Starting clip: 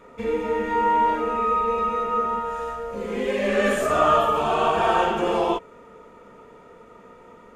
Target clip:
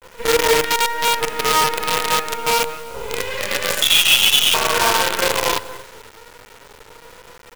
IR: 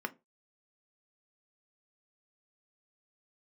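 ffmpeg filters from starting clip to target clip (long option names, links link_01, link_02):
-filter_complex "[0:a]aecho=1:1:2:0.62,aecho=1:1:232|464:0.178|0.0409,asettb=1/sr,asplit=3[link_01][link_02][link_03];[link_01]atrim=end=3.824[link_04];[link_02]atrim=start=3.82:end=4.54,asetpts=PTS-STARTPTS,afade=type=in:duration=0.004:curve=qsin,afade=type=out:start_time=0.716:duration=0.004:curve=qsin,lowpass=frequency=3300:width_type=q:width=0.5098,lowpass=frequency=3300:width_type=q:width=0.6013,lowpass=frequency=3300:width_type=q:width=0.9,lowpass=frequency=3300:width_type=q:width=2.563,afreqshift=-3900[link_05];[link_03]atrim=start=4.536[link_06];[link_04][link_05]acrossfade=duration=0.004:curve1=hsin:curve2=qsin[link_07];[link_07][link_06]acrossfade=duration=0.004:curve1=qsin:curve2=hsin,highpass=70,alimiter=limit=-16dB:level=0:latency=1:release=96,equalizer=frequency=230:width_type=o:width=2.4:gain=-7,asplit=2[link_08][link_09];[1:a]atrim=start_sample=2205,atrim=end_sample=4410[link_10];[link_09][link_10]afir=irnorm=-1:irlink=0,volume=-12dB[link_11];[link_08][link_11]amix=inputs=2:normalize=0,flanger=delay=5.9:depth=3.9:regen=22:speed=0.27:shape=sinusoidal,asettb=1/sr,asplit=3[link_12][link_13][link_14];[link_12]atrim=end=0.674[link_15];[link_13]atrim=start=0.67:end=1.42,asetpts=PTS-STARTPTS,afade=type=in:duration=0.004:curve=qsin,afade=type=out:start_time=0.746:duration=0.004:curve=qsin,acompressor=threshold=-25dB:ratio=8[link_16];[link_14]atrim=start=1.416[link_17];[link_15][link_16]acrossfade=duration=0.004:curve1=hsin:curve2=qsin[link_18];[link_18][link_17]acrossfade=duration=0.004:curve1=qsin:curve2=hsin,acrusher=bits=5:dc=4:mix=0:aa=0.000001,asettb=1/sr,asplit=3[link_19][link_20][link_21];[link_19]atrim=end=2.354[link_22];[link_20]atrim=start=2.35:end=3.19,asetpts=PTS-STARTPTS,afade=type=in:duration=0.004:curve=qsin,afade=type=out:start_time=0.836:duration=0.004:curve=qsin,bandreject=frequency=1800:width=5.3[link_23];[link_21]atrim=start=3.186[link_24];[link_22][link_23]acrossfade=duration=0.004:curve1=hsin:curve2=qsin[link_25];[link_25][link_24]acrossfade=duration=0.004:curve1=qsin:curve2=hsin,adynamicequalizer=threshold=0.01:dfrequency=1600:dqfactor=0.7:tfrequency=1600:tqfactor=0.7:attack=5:release=100:ratio=0.375:range=2.5:mode=boostabove:tftype=highshelf,volume=8.5dB"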